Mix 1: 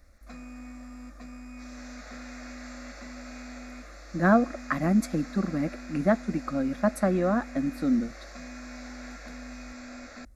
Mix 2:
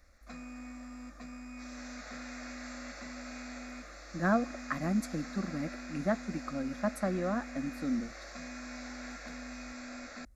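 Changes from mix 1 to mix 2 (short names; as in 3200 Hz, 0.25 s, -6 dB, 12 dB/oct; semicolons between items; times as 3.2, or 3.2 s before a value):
speech -6.0 dB; master: add bell 360 Hz -2.5 dB 2.2 oct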